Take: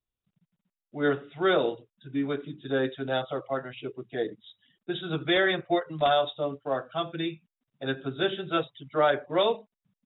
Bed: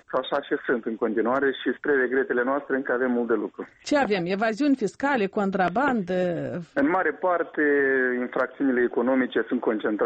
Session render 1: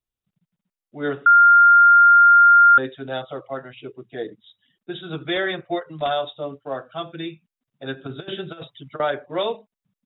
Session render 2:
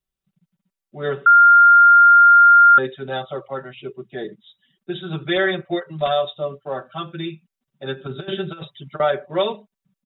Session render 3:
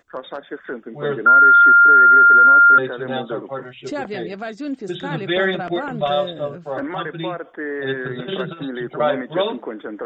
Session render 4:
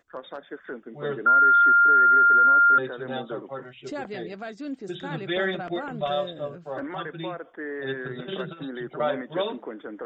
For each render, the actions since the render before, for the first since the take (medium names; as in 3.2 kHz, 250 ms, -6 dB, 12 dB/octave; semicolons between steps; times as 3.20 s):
1.26–2.78 s: bleep 1.4 kHz -8 dBFS; 8.05–9.00 s: compressor with a negative ratio -31 dBFS, ratio -0.5
peaking EQ 92 Hz +5 dB 1.5 oct; comb 5.2 ms, depth 78%
add bed -5.5 dB
trim -7 dB